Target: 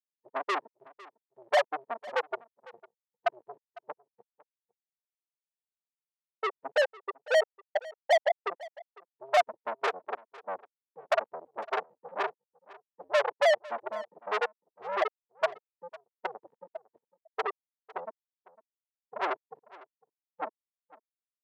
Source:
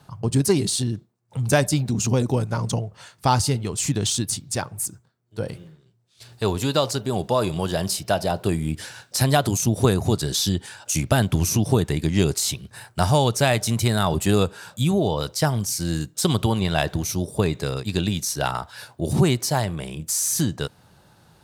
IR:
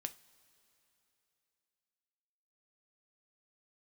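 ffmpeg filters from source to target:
-filter_complex "[0:a]flanger=delay=9.4:depth=4.6:regen=74:speed=0.68:shape=sinusoidal,asuperstop=centerf=1000:order=20:qfactor=1.6,afftfilt=real='re*gte(hypot(re,im),0.447)':imag='im*gte(hypot(re,im),0.447)':win_size=1024:overlap=0.75,afwtdn=0.0158,asplit=2[a][b];[b]asoftclip=type=tanh:threshold=-26dB,volume=-6dB[c];[a][c]amix=inputs=2:normalize=0,asplit=2[d][e];[e]highpass=f=720:p=1,volume=33dB,asoftclip=type=tanh:threshold=-11.5dB[f];[d][f]amix=inputs=2:normalize=0,lowpass=f=2.4k:p=1,volume=-6dB,highpass=f=650:w=0.5412,highpass=f=650:w=1.3066,asplit=2[g][h];[h]aecho=0:1:503:0.0944[i];[g][i]amix=inputs=2:normalize=0"

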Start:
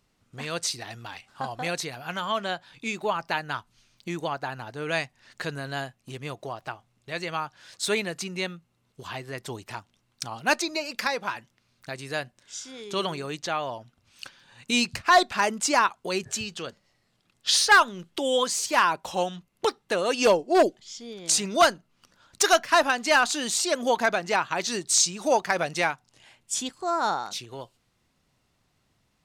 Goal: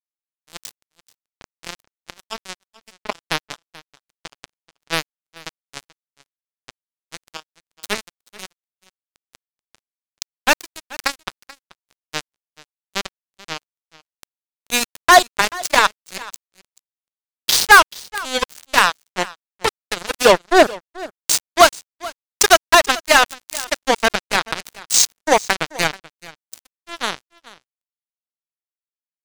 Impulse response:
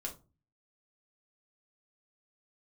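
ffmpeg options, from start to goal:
-af "acrusher=bits=2:mix=0:aa=0.5,aecho=1:1:433:0.1,volume=7.5dB"

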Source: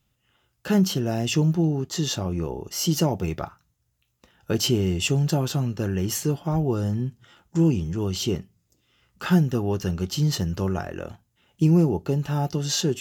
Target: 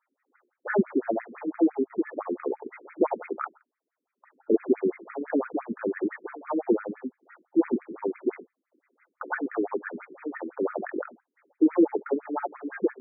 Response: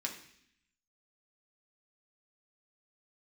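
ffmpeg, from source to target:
-filter_complex "[0:a]acrusher=bits=6:mode=log:mix=0:aa=0.000001,asplit=2[a][b];[1:a]atrim=start_sample=2205,atrim=end_sample=4410[c];[b][c]afir=irnorm=-1:irlink=0,volume=-14.5dB[d];[a][d]amix=inputs=2:normalize=0,afftfilt=real='re*between(b*sr/1024,300*pow(1800/300,0.5+0.5*sin(2*PI*5.9*pts/sr))/1.41,300*pow(1800/300,0.5+0.5*sin(2*PI*5.9*pts/sr))*1.41)':imag='im*between(b*sr/1024,300*pow(1800/300,0.5+0.5*sin(2*PI*5.9*pts/sr))/1.41,300*pow(1800/300,0.5+0.5*sin(2*PI*5.9*pts/sr))*1.41)':win_size=1024:overlap=0.75,volume=6dB"

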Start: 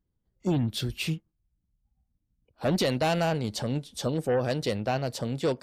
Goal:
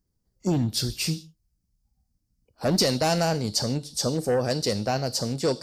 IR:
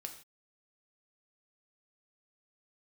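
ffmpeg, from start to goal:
-filter_complex "[0:a]asplit=2[a][b];[b]highshelf=f=3.3k:t=q:w=3:g=14[c];[1:a]atrim=start_sample=2205[d];[c][d]afir=irnorm=-1:irlink=0,volume=-6.5dB[e];[a][e]amix=inputs=2:normalize=0"

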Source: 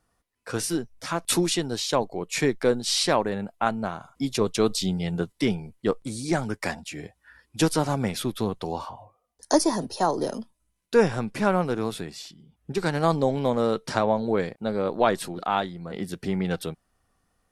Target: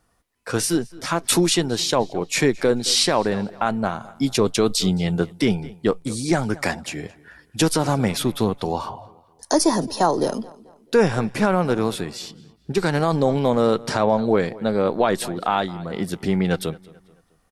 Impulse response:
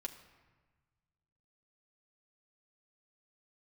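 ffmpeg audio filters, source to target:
-filter_complex "[0:a]asplit=2[a][b];[b]adelay=218,lowpass=f=4.6k:p=1,volume=-21.5dB,asplit=2[c][d];[d]adelay=218,lowpass=f=4.6k:p=1,volume=0.42,asplit=2[e][f];[f]adelay=218,lowpass=f=4.6k:p=1,volume=0.42[g];[c][e][g]amix=inputs=3:normalize=0[h];[a][h]amix=inputs=2:normalize=0,alimiter=level_in=12.5dB:limit=-1dB:release=50:level=0:latency=1,volume=-6.5dB"

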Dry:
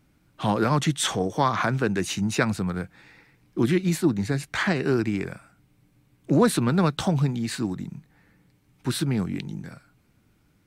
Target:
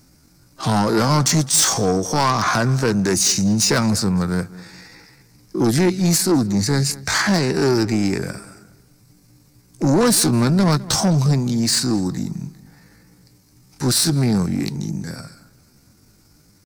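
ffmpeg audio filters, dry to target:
-filter_complex "[0:a]highshelf=f=4k:t=q:w=3:g=7.5,asoftclip=type=tanh:threshold=-20.5dB,atempo=0.64,asplit=2[a][b];[b]adelay=208,lowpass=f=3.7k:p=1,volume=-19dB,asplit=2[c][d];[d]adelay=208,lowpass=f=3.7k:p=1,volume=0.37,asplit=2[e][f];[f]adelay=208,lowpass=f=3.7k:p=1,volume=0.37[g];[c][e][g]amix=inputs=3:normalize=0[h];[a][h]amix=inputs=2:normalize=0,volume=9dB"

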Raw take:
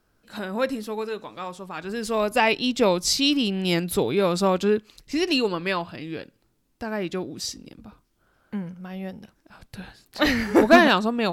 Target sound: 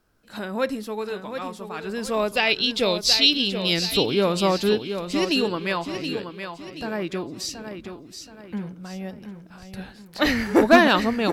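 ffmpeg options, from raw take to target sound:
-filter_complex "[0:a]asettb=1/sr,asplit=3[a][b][c];[a]atrim=end=2.334[d];[b]atrim=start=2.33:end=3.96,asetpts=PTS-STARTPTS,afade=t=in:d=0.004:c=qsin,afade=t=out:st=1.626:d=0.004:c=qsin,equalizer=f=250:t=o:w=1:g=-6,equalizer=f=1k:t=o:w=1:g=-8,equalizer=f=4k:t=o:w=1:g=10,equalizer=f=8k:t=o:w=1:g=-7[e];[c]atrim=start=3.956[f];[d][e]acrossfade=d=0.004:c1=hsin:c2=qsin[g];[g][f]acrossfade=d=0.004:c1=qsin:c2=hsin,aecho=1:1:726|1452|2178|2904:0.376|0.15|0.0601|0.0241"

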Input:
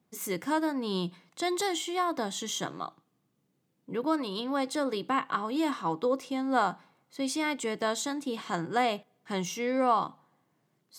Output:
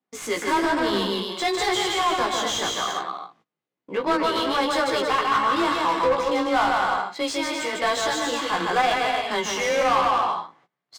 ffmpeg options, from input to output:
-filter_complex "[0:a]asettb=1/sr,asplit=3[a][b][c];[a]atrim=end=7.284[d];[b]atrim=start=7.28:end=7.73,asetpts=PTS-STARTPTS,afade=t=in:d=0.004:c=qsin,afade=t=out:st=0.446:d=0.004:c=qsin,acompressor=threshold=-35dB:ratio=6[e];[c]atrim=start=7.726[f];[d][e]acrossfade=d=0.004:c1=hsin:c2=qsin[g];[g][f]acrossfade=d=0.004:c1=qsin:c2=hsin,highshelf=f=2.7k:g=5.5,aecho=1:1:150|255|328.5|380|416:0.631|0.398|0.251|0.158|0.1,asubboost=boost=8:cutoff=70,afreqshift=17,asplit=2[h][i];[i]highpass=f=720:p=1,volume=24dB,asoftclip=type=tanh:threshold=-9dB[j];[h][j]amix=inputs=2:normalize=0,lowpass=f=2.5k:p=1,volume=-6dB,flanger=delay=15:depth=3.1:speed=1,agate=range=-21dB:threshold=-54dB:ratio=16:detection=peak,adynamicsmooth=sensitivity=6.5:basefreq=5.6k"

